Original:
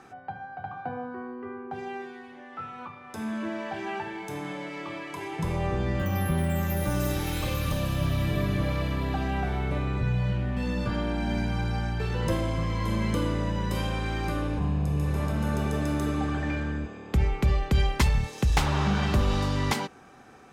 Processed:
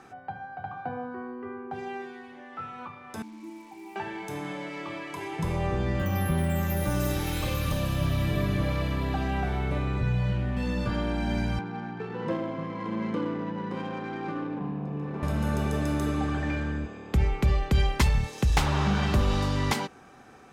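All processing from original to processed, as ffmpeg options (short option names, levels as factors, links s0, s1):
-filter_complex "[0:a]asettb=1/sr,asplit=3[s0][s1][s2];[s0]atrim=end=3.224[s3];[s1]atrim=start=3.22:end=3.96,asetpts=PTS-STARTPTS,afade=t=in:d=0.004:c=qsin,afade=t=out:st=0.736:d=0.004:c=qsin,asplit=3[s4][s5][s6];[s4]bandpass=f=300:t=q:w=8,volume=1[s7];[s5]bandpass=f=870:t=q:w=8,volume=0.501[s8];[s6]bandpass=f=2240:t=q:w=8,volume=0.355[s9];[s7][s8][s9]amix=inputs=3:normalize=0,acrusher=bits=8:mix=0:aa=0.5[s10];[s2]atrim=start=3.956[s11];[s3][s10]acrossfade=d=0.004:c1=hsin:c2=qsin[s12];[s12][s11]acrossfade=d=0.004:c1=qsin:c2=hsin,asettb=1/sr,asplit=3[s13][s14][s15];[s13]atrim=end=11.594[s16];[s14]atrim=start=11.59:end=15.23,asetpts=PTS-STARTPTS,afade=t=in:d=0.004:c=qsin,afade=t=out:st=3.636:d=0.004:c=qsin,bandreject=f=590:w=13,adynamicsmooth=sensitivity=1.5:basefreq=1400,highpass=f=170:w=0.5412,highpass=f=170:w=1.3066[s17];[s15]atrim=start=15.226[s18];[s16][s17]acrossfade=d=0.004:c1=hsin:c2=qsin[s19];[s19][s18]acrossfade=d=0.004:c1=qsin:c2=hsin"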